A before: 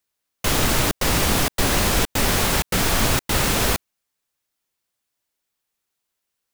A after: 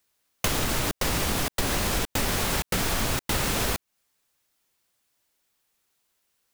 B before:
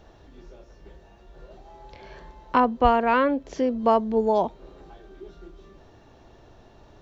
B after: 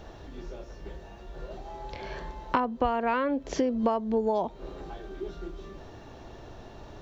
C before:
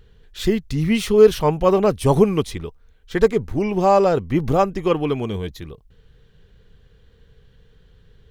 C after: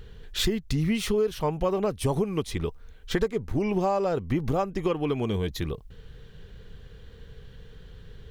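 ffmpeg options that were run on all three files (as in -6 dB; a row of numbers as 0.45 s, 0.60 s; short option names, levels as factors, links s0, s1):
-af "acompressor=threshold=0.0355:ratio=8,volume=2"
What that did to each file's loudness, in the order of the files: -6.0 LU, -8.0 LU, -9.0 LU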